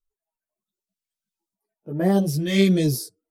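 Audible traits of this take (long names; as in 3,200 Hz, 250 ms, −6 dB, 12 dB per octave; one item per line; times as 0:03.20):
phaser sweep stages 2, 0.68 Hz, lowest notch 760–4,100 Hz
tremolo saw up 0.65 Hz, depth 60%
a shimmering, thickened sound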